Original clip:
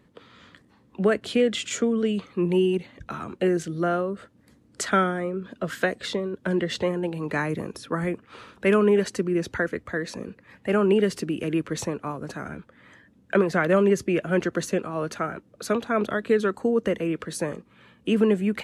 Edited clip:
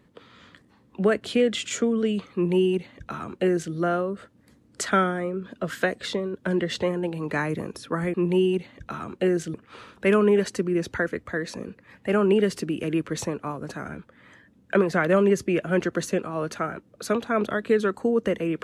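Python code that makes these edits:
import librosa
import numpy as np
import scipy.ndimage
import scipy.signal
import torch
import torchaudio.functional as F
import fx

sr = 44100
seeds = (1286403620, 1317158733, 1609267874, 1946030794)

y = fx.edit(x, sr, fx.duplicate(start_s=2.34, length_s=1.4, to_s=8.14), tone=tone)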